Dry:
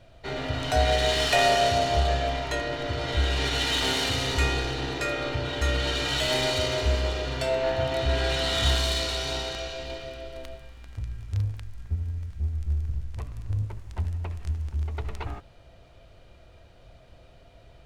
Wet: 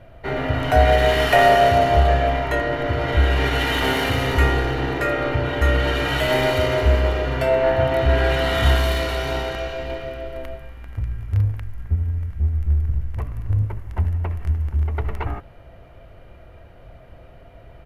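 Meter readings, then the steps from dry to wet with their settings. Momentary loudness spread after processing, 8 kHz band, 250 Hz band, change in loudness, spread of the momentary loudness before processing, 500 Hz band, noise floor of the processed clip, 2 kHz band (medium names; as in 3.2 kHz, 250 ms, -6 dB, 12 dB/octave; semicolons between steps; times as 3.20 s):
14 LU, -4.5 dB, +8.0 dB, +6.0 dB, 15 LU, +8.0 dB, -45 dBFS, +7.0 dB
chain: high-order bell 5.5 kHz -13.5 dB; band-stop 2.5 kHz, Q 12; resampled via 32 kHz; trim +8 dB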